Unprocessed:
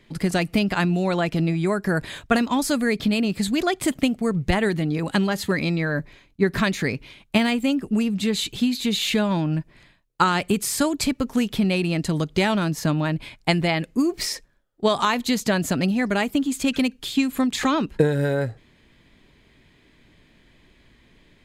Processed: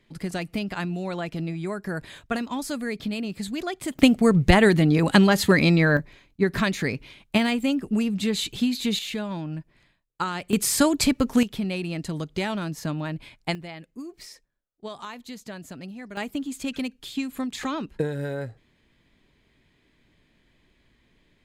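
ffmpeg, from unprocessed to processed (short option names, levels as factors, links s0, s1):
-af "asetnsamples=n=441:p=0,asendcmd='3.99 volume volume 5dB;5.97 volume volume -2dB;8.99 volume volume -9dB;10.53 volume volume 2dB;11.43 volume volume -7dB;13.55 volume volume -17dB;16.17 volume volume -8dB',volume=0.398"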